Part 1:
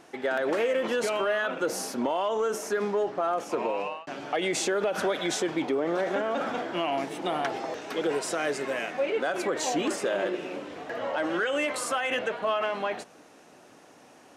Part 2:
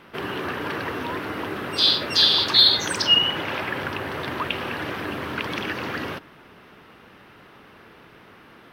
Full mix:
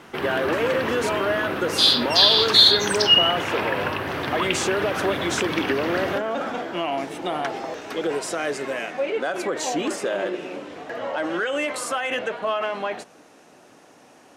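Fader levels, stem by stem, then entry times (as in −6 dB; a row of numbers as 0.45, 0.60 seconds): +2.5, +1.5 decibels; 0.00, 0.00 seconds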